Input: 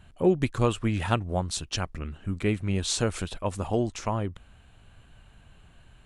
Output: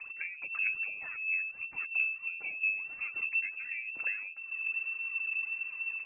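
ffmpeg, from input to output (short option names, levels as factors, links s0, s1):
-filter_complex "[0:a]acrossover=split=170[s0][s1];[s0]dynaudnorm=f=170:g=5:m=3.98[s2];[s2][s1]amix=inputs=2:normalize=0,alimiter=limit=0.15:level=0:latency=1,acompressor=threshold=0.0112:ratio=6,aphaser=in_gain=1:out_gain=1:delay=4.2:decay=0.72:speed=1.5:type=triangular,lowpass=f=2300:t=q:w=0.5098,lowpass=f=2300:t=q:w=0.6013,lowpass=f=2300:t=q:w=0.9,lowpass=f=2300:t=q:w=2.563,afreqshift=-2700"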